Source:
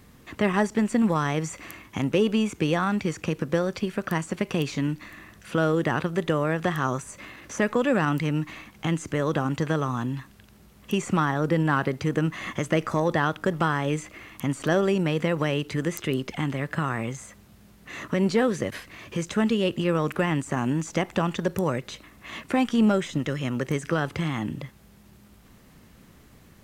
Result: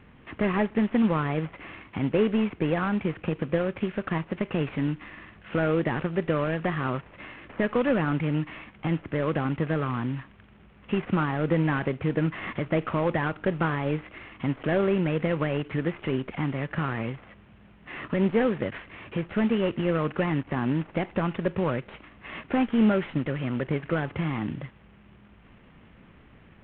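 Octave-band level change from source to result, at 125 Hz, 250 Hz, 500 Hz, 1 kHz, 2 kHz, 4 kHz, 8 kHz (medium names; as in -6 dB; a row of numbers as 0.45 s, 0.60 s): -1.0 dB, -1.0 dB, -1.0 dB, -3.5 dB, -2.5 dB, -6.0 dB, under -40 dB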